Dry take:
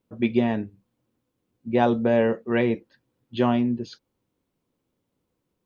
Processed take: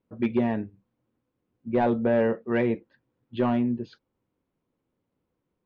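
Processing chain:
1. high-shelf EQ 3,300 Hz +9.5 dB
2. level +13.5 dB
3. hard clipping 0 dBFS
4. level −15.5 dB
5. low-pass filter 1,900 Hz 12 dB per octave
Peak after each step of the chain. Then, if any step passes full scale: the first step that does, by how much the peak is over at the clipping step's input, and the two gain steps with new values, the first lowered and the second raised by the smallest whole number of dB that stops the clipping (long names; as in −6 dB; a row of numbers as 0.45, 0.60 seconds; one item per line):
−6.0, +7.5, 0.0, −15.5, −15.0 dBFS
step 2, 7.5 dB
step 2 +5.5 dB, step 4 −7.5 dB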